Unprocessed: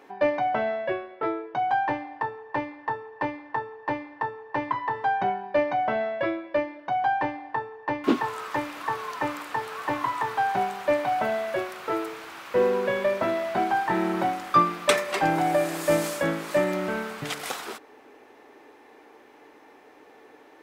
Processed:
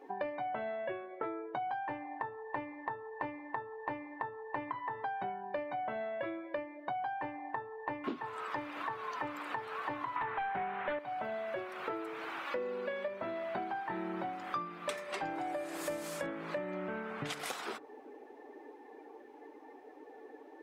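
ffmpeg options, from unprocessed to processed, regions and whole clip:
-filter_complex "[0:a]asettb=1/sr,asplit=3[a][b][c];[a]atrim=end=10.164[d];[b]atrim=start=10.16:end=10.99,asetpts=PTS-STARTPTS,afade=t=in:d=0.004:c=qsin,afade=t=out:st=0.826:d=0.004:c=qsin,aeval=exprs='0.266*sin(PI/2*2.51*val(0)/0.266)':c=same,lowpass=f=2k:t=q:w=1.5[e];[c]atrim=start=10.986[f];[d][e]acrossfade=d=0.004:c1=hsin:c2=qsin[g];[g][f]acrossfade=d=0.004:c1=qsin:c2=hsin,asettb=1/sr,asplit=3[h][i][j];[h]atrim=end=12.474[k];[i]atrim=start=12.47:end=13.08,asetpts=PTS-STARTPTS,afade=t=in:d=0.004:c=qsin,afade=t=out:st=0.606:d=0.004:c=qsin,lowshelf=f=180:g=-7,aecho=1:1:3.5:0.85,atrim=end_sample=26901[l];[j]atrim=start=13.076[m];[k][l]acrossfade=d=0.004:c1=hsin:c2=qsin[n];[n][m]acrossfade=d=0.004:c1=qsin:c2=hsin,asettb=1/sr,asplit=3[o][p][q];[o]atrim=end=16.264[r];[p]atrim=start=16.26:end=17.26,asetpts=PTS-STARTPTS,afade=t=in:d=0.004:c=qsin,afade=t=out:st=0.996:d=0.004:c=qsin,highpass=51,highshelf=f=5.6k:g=-10.5[s];[q]atrim=start=17.256[t];[r][s]acrossfade=d=0.004:c1=hsin:c2=qsin[u];[u][t]acrossfade=d=0.004:c1=qsin:c2=hsin,afftdn=nr=15:nf=-47,bandreject=f=82.62:t=h:w=4,bandreject=f=165.24:t=h:w=4,acompressor=threshold=-38dB:ratio=8,volume=2dB"

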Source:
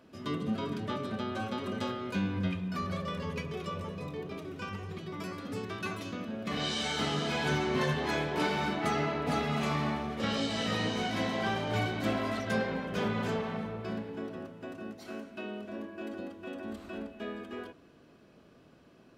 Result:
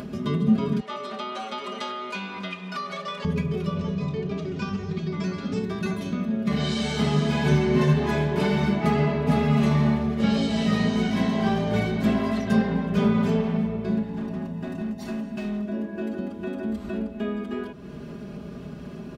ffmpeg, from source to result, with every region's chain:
-filter_complex "[0:a]asettb=1/sr,asplit=3[a][b][c];[a]atrim=end=0.804[d];[b]atrim=start=0.8:end=3.25,asetpts=PTS-STARTPTS,afade=t=in:d=0.004:c=qsin,afade=t=out:st=2.446:d=0.004:c=qsin,highpass=790,lowpass=8k,bandreject=f=1.6k:w=12[e];[c]atrim=start=3.246[f];[d][e]acrossfade=d=0.004:c1=hsin:c2=qsin[g];[g][f]acrossfade=d=0.004:c1=qsin:c2=hsin,asettb=1/sr,asplit=3[h][i][j];[h]atrim=end=3.764[k];[i]atrim=start=3.76:end=5.59,asetpts=PTS-STARTPTS,afade=t=in:d=0.004:c=qsin,afade=t=out:st=1.826:d=0.004:c=qsin,lowpass=f=6.4k:w=0.5412,lowpass=f=6.4k:w=1.3066,highshelf=f=3.5k:g=8.5[l];[j]atrim=start=5.586[m];[k][l]acrossfade=d=0.004:c1=hsin:c2=qsin[n];[n][m]acrossfade=d=0.004:c1=qsin:c2=hsin,asettb=1/sr,asplit=3[o][p][q];[o]atrim=end=14.034[r];[p]atrim=start=14.03:end=15.66,asetpts=PTS-STARTPTS,afade=t=in:d=0.004:c=qsin,afade=t=out:st=1.626:d=0.004:c=qsin,aecho=1:1:1.1:0.5,atrim=end_sample=71883,asoftclip=type=hard:threshold=-39dB[s];[q]atrim=start=15.656[t];[r][s]acrossfade=d=0.004:c1=hsin:c2=qsin[u];[u][t]acrossfade=d=0.004:c1=qsin:c2=hsin,equalizer=f=88:w=0.36:g=14.5,aecho=1:1:4.9:0.76,acompressor=mode=upward:threshold=-25dB:ratio=2.5"

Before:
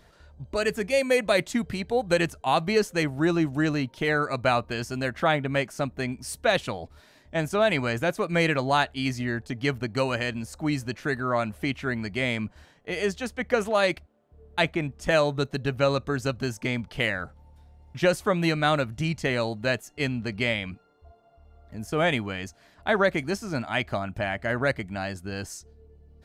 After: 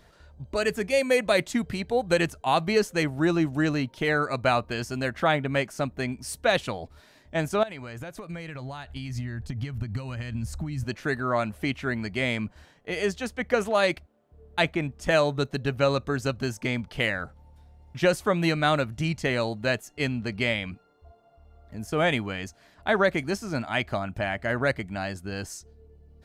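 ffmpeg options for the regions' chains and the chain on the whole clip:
-filter_complex "[0:a]asettb=1/sr,asplit=3[a][b][c];[a]atrim=end=7.634[d];[b]atrim=start=7.63:end=10.84,asetpts=PTS-STARTPTS,afade=t=in:d=0.004:c=qsin,afade=t=out:st=3.206:d=0.004:c=qsin,acompressor=threshold=-33dB:ratio=20:attack=3.2:release=140:knee=1:detection=peak,asubboost=boost=9:cutoff=160[e];[c]atrim=start=10.836[f];[d][e]acrossfade=d=0.004:c1=hsin:c2=qsin[g];[g][f]acrossfade=d=0.004:c1=qsin:c2=hsin"

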